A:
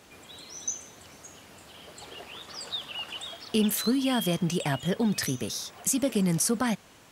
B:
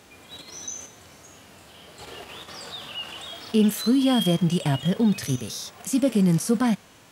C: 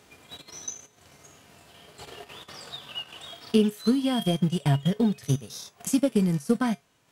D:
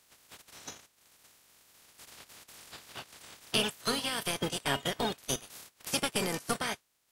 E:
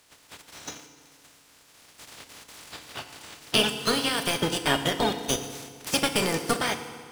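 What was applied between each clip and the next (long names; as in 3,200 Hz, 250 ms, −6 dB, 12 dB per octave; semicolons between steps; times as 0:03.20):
harmonic and percussive parts rebalanced percussive −12 dB; in parallel at +1 dB: output level in coarse steps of 17 dB; on the sum: level +3.5 dB
transient designer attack +7 dB, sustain −10 dB; tuned comb filter 140 Hz, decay 0.19 s, harmonics odd, mix 60%; level +1.5 dB
ceiling on every frequency bin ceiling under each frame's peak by 28 dB; level −8.5 dB
running median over 3 samples; feedback delay network reverb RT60 1.9 s, low-frequency decay 1×, high-frequency decay 0.85×, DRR 7.5 dB; level +6.5 dB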